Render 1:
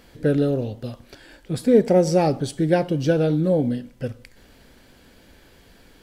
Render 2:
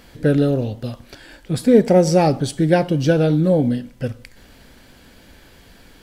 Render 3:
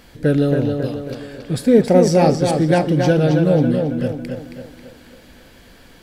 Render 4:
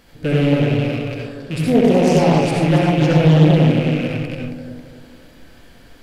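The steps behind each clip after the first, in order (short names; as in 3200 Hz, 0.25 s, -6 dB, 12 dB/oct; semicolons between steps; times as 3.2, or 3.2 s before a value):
bell 420 Hz -3 dB 0.95 oct; gain +5 dB
tape echo 0.273 s, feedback 51%, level -4 dB, low-pass 4800 Hz
rattling part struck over -26 dBFS, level -16 dBFS; reverb RT60 0.55 s, pre-delay 65 ms, DRR -1.5 dB; Doppler distortion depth 0.51 ms; gain -5 dB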